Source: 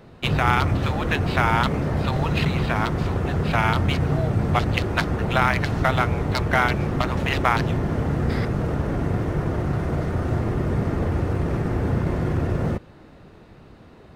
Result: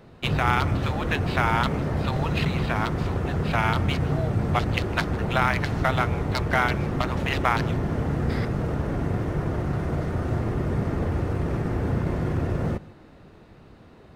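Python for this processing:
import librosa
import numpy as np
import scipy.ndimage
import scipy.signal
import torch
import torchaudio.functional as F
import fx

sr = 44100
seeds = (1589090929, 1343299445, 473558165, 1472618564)

y = x + 10.0 ** (-21.0 / 20.0) * np.pad(x, (int(155 * sr / 1000.0), 0))[:len(x)]
y = y * 10.0 ** (-2.5 / 20.0)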